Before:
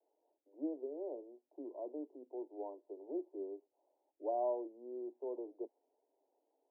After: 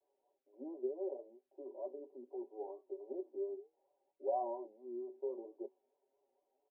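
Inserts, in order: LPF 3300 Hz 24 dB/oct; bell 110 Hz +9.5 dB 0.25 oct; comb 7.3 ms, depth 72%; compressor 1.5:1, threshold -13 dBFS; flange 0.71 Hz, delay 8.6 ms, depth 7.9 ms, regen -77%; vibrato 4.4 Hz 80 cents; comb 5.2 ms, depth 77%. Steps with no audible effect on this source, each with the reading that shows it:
LPF 3300 Hz: input band ends at 1000 Hz; bell 110 Hz: input band starts at 230 Hz; compressor, threshold -13 dBFS: input peak -24.5 dBFS

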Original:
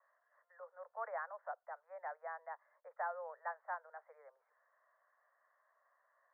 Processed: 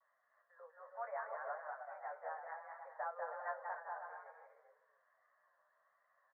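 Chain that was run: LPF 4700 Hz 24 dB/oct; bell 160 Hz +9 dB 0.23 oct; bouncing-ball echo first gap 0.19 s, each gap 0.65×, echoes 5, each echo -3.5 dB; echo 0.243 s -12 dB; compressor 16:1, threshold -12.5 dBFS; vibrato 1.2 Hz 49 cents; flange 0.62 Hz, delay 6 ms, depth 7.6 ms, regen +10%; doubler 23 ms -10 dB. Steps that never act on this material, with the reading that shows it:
LPF 4700 Hz: input band ends at 2000 Hz; bell 160 Hz: input band starts at 430 Hz; compressor, threshold -12.5 dBFS: input peak -27.5 dBFS

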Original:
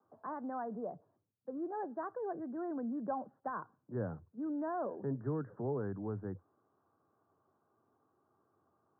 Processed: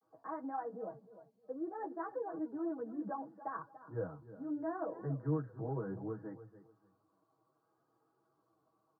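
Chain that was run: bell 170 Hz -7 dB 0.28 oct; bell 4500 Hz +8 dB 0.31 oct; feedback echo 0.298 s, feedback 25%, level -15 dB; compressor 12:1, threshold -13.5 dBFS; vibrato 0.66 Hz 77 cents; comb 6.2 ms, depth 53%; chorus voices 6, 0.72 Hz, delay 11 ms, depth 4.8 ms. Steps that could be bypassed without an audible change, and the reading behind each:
bell 4500 Hz: input band ends at 1700 Hz; compressor, threshold -13.5 dBFS: input peak -26.0 dBFS

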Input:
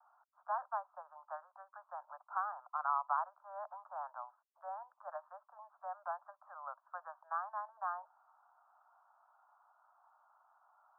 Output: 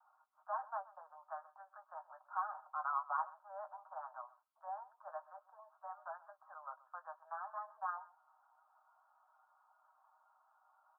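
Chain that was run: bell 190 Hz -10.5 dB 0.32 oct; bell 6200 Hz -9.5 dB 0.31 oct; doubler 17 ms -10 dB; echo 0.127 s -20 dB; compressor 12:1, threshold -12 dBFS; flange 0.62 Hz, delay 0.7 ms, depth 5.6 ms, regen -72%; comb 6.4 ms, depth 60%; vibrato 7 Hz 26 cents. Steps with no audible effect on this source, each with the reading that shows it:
bell 190 Hz: input band starts at 510 Hz; bell 6200 Hz: input band ends at 1800 Hz; compressor, threshold -12 dBFS: input peak -22.0 dBFS

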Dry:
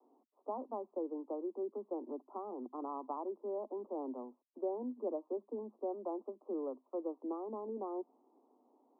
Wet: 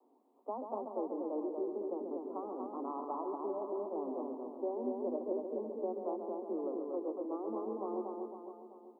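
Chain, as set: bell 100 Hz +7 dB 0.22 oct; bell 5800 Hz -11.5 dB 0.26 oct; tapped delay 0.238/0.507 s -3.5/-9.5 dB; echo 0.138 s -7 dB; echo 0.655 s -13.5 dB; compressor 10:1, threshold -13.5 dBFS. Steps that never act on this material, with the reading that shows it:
bell 100 Hz: input band starts at 190 Hz; bell 5800 Hz: input band ends at 1300 Hz; compressor, threshold -13.5 dBFS: input peak -24.0 dBFS

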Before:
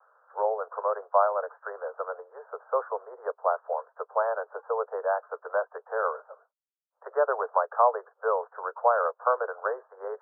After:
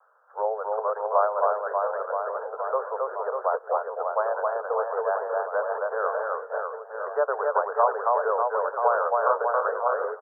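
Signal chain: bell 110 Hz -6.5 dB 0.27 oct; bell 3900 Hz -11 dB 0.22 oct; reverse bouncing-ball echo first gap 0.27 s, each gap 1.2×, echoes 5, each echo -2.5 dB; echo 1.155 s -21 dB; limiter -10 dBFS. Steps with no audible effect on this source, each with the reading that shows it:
bell 110 Hz: input band starts at 360 Hz; bell 3900 Hz: input band ends at 1800 Hz

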